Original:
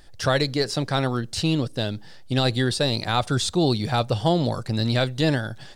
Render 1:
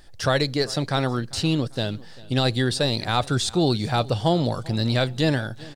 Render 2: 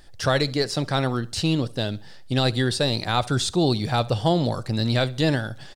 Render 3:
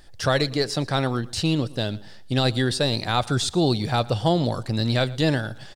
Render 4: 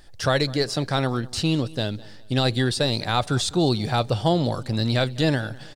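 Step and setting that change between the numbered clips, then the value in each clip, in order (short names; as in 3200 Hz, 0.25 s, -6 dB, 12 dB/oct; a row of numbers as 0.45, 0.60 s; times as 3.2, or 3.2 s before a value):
feedback echo, time: 395, 68, 115, 203 ms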